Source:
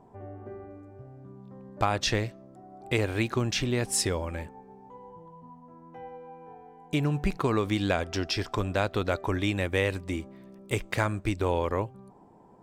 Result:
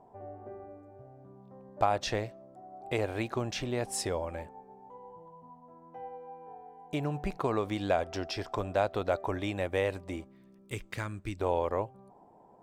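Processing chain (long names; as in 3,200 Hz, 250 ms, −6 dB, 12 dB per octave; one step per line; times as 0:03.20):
parametric band 680 Hz +10.5 dB 1.2 octaves, from 0:10.24 −6.5 dB, from 0:11.39 +10 dB
level −8 dB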